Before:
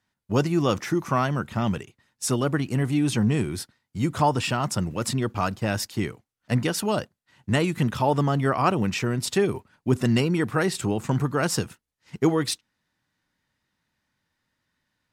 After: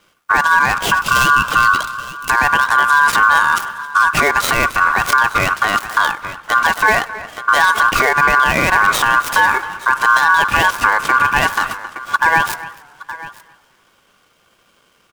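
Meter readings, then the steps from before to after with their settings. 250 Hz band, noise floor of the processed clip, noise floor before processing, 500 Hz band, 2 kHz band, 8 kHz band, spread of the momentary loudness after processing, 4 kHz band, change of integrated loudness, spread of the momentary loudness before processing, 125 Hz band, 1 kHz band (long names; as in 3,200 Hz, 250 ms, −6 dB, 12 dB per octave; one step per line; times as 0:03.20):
−6.0 dB, −57 dBFS, −83 dBFS, +1.0 dB, +22.0 dB, +7.5 dB, 10 LU, +10.5 dB, +11.5 dB, 7 LU, −6.5 dB, +17.0 dB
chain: gap after every zero crossing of 0.11 ms
high-pass filter 46 Hz
notch filter 2,900 Hz, Q 14
gain on a spectral selection 0:00.95–0:02.22, 320–1,300 Hz −27 dB
downward compressor 10 to 1, threshold −28 dBFS, peak gain reduction 13.5 dB
slap from a distant wall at 46 metres, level −19 dB
ring modulation 1,300 Hz
on a send: single-tap delay 868 ms −20 dB
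on the sum: boost into a limiter +26 dB
feedback echo with a swinging delay time 96 ms, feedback 72%, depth 174 cents, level −23 dB
level −1 dB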